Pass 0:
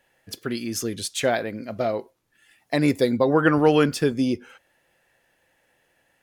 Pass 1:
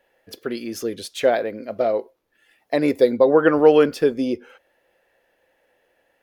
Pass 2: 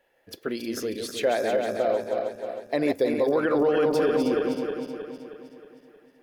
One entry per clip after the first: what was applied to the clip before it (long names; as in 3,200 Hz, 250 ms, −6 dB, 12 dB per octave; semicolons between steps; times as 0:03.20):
octave-band graphic EQ 125/500/8,000 Hz −9/+8/−8 dB; level −1 dB
feedback delay that plays each chunk backwards 157 ms, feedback 71%, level −5 dB; brickwall limiter −11.5 dBFS, peak gain reduction 10.5 dB; level −3 dB